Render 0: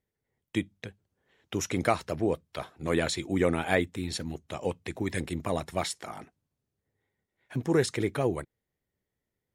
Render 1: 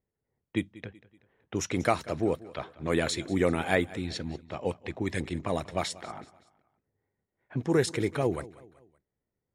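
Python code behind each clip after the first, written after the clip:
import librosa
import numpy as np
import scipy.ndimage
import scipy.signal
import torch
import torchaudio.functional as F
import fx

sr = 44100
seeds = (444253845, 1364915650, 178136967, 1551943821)

y = fx.env_lowpass(x, sr, base_hz=1400.0, full_db=-24.5)
y = fx.echo_feedback(y, sr, ms=189, feedback_pct=45, wet_db=-19.5)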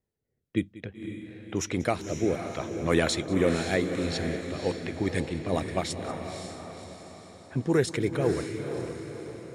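y = fx.rotary_switch(x, sr, hz=0.6, then_hz=5.5, switch_at_s=3.76)
y = fx.echo_diffused(y, sr, ms=531, feedback_pct=50, wet_db=-7)
y = y * librosa.db_to_amplitude(3.5)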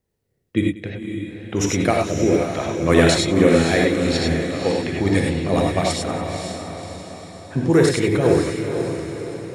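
y = fx.rev_gated(x, sr, seeds[0], gate_ms=120, shape='rising', drr_db=0.0)
y = y * librosa.db_to_amplitude(6.5)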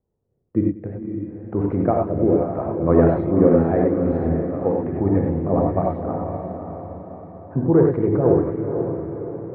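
y = scipy.signal.sosfilt(scipy.signal.butter(4, 1100.0, 'lowpass', fs=sr, output='sos'), x)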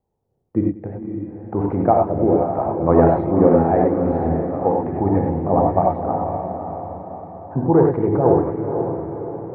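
y = fx.peak_eq(x, sr, hz=830.0, db=11.5, octaves=0.55)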